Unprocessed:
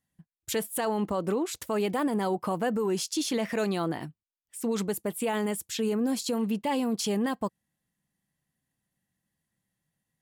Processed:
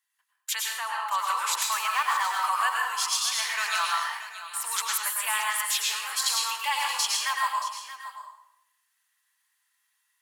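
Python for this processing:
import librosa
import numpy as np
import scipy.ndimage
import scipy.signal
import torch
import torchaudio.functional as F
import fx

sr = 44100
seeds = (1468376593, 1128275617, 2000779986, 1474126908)

y = fx.median_filter(x, sr, points=9, at=(1.81, 2.4))
y = scipy.signal.sosfilt(scipy.signal.ellip(4, 1.0, 80, 1000.0, 'highpass', fs=sr, output='sos'), y)
y = fx.rider(y, sr, range_db=10, speed_s=0.5)
y = fx.spacing_loss(y, sr, db_at_10k=20, at=(0.62, 1.08))
y = y + 10.0 ** (-13.5 / 20.0) * np.pad(y, (int(627 * sr / 1000.0), 0))[:len(y)]
y = fx.rev_plate(y, sr, seeds[0], rt60_s=0.79, hf_ratio=0.8, predelay_ms=90, drr_db=-1.5)
y = y * 10.0 ** (8.0 / 20.0)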